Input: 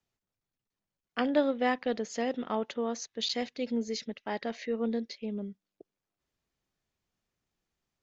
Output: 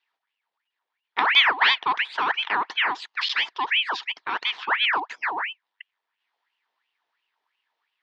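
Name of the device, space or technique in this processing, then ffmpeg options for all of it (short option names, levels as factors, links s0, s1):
voice changer toy: -af "aeval=exprs='val(0)*sin(2*PI*1700*n/s+1700*0.7/2.9*sin(2*PI*2.9*n/s))':c=same,highpass=500,equalizer=f=560:t=q:w=4:g=-9,equalizer=f=950:t=q:w=4:g=8,equalizer=f=1800:t=q:w=4:g=6,equalizer=f=3300:t=q:w=4:g=4,lowpass=f=4500:w=0.5412,lowpass=f=4500:w=1.3066,volume=2.66"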